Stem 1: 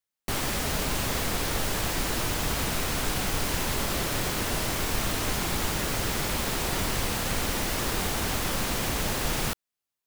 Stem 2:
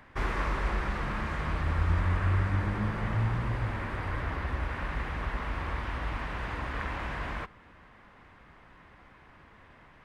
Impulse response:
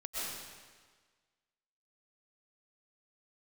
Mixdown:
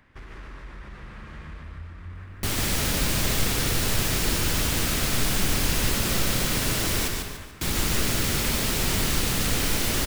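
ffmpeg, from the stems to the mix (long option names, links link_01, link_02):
-filter_complex "[0:a]adelay=2150,volume=1.5dB,asplit=3[link_01][link_02][link_03];[link_01]atrim=end=7.08,asetpts=PTS-STARTPTS,afade=type=out:start_time=7.076:duration=0.004:curve=hsin[link_04];[link_02]atrim=start=7.08:end=7.61,asetpts=PTS-STARTPTS,volume=0[link_05];[link_03]atrim=start=7.61,asetpts=PTS-STARTPTS,afade=type=in:duration=0.004:curve=hsin[link_06];[link_04][link_05][link_06]concat=n=3:v=0:a=1,asplit=3[link_07][link_08][link_09];[link_08]volume=-8dB[link_10];[link_09]volume=-3.5dB[link_11];[1:a]acompressor=threshold=-34dB:ratio=6,asoftclip=type=tanh:threshold=-31dB,volume=-3.5dB,asplit=3[link_12][link_13][link_14];[link_13]volume=-9dB[link_15];[link_14]volume=-3.5dB[link_16];[2:a]atrim=start_sample=2205[link_17];[link_10][link_15]amix=inputs=2:normalize=0[link_18];[link_18][link_17]afir=irnorm=-1:irlink=0[link_19];[link_11][link_16]amix=inputs=2:normalize=0,aecho=0:1:145|290|435|580|725:1|0.36|0.13|0.0467|0.0168[link_20];[link_07][link_12][link_19][link_20]amix=inputs=4:normalize=0,equalizer=frequency=820:width_type=o:width=1.8:gain=-7"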